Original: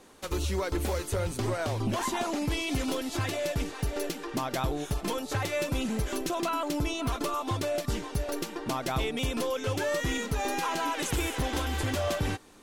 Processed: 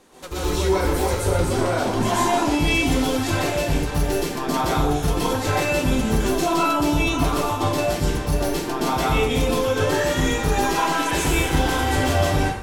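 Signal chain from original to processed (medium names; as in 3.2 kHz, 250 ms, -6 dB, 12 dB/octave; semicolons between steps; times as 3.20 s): plate-style reverb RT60 0.76 s, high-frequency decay 0.7×, pre-delay 110 ms, DRR -9 dB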